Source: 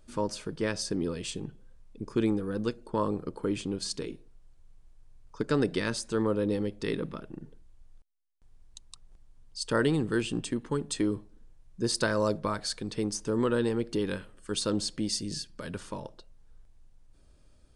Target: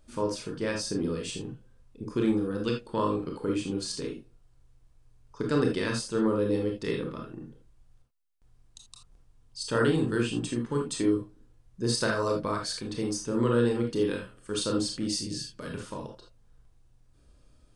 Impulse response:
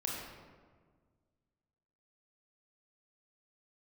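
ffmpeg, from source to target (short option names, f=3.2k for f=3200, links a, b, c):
-filter_complex "[0:a]asettb=1/sr,asplit=3[a][b][c];[a]atrim=end=2.634[d];[b]atrim=start=2.63:end=3.38,asetpts=PTS-STARTPTS,afade=t=in:d=0.004:c=qsin,afade=t=out:st=0.746:d=0.004:c=qsin,equalizer=f=3k:t=o:w=1.1:g=9[e];[c]atrim=start=3.376[f];[d][e]acrossfade=d=0.004:c1=hsin:c2=qsin[g];[g][f]acrossfade=d=0.004:c1=qsin:c2=hsin[h];[1:a]atrim=start_sample=2205,atrim=end_sample=3969[i];[h][i]afir=irnorm=-1:irlink=0"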